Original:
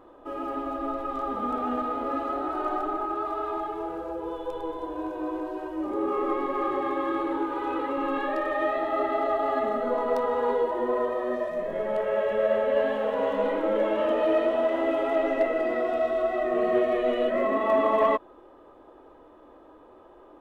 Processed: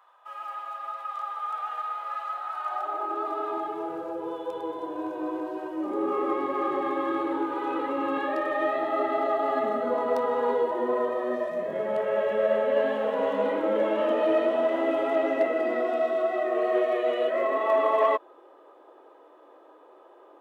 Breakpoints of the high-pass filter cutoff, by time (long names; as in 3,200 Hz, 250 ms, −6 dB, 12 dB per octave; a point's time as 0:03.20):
high-pass filter 24 dB per octave
0:02.64 920 Hz
0:03.11 350 Hz
0:03.92 110 Hz
0:15.33 110 Hz
0:16.60 360 Hz